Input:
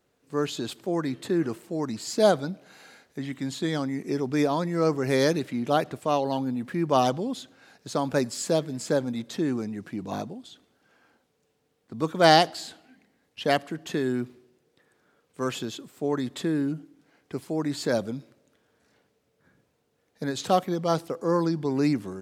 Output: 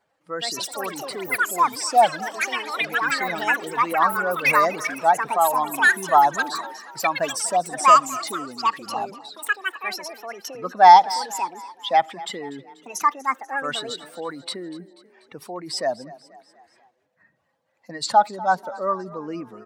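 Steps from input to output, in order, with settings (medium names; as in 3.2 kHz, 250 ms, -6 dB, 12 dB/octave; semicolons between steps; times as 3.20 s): spectral contrast enhancement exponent 1.7; resonant low shelf 540 Hz -13.5 dB, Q 1.5; tape speed +13%; ever faster or slower copies 209 ms, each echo +6 st, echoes 3; frequency-shifting echo 243 ms, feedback 52%, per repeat +31 Hz, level -18.5 dB; trim +7.5 dB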